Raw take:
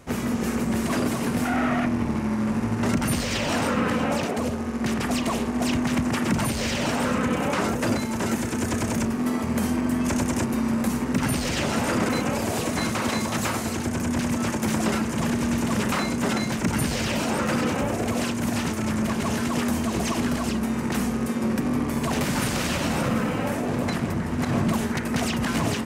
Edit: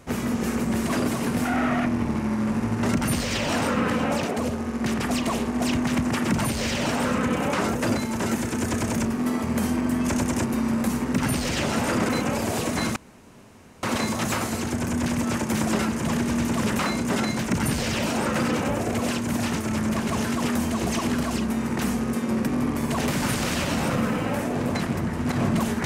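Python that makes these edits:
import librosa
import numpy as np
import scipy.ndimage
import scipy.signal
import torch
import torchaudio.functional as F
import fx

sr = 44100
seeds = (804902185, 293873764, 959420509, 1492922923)

y = fx.edit(x, sr, fx.insert_room_tone(at_s=12.96, length_s=0.87), tone=tone)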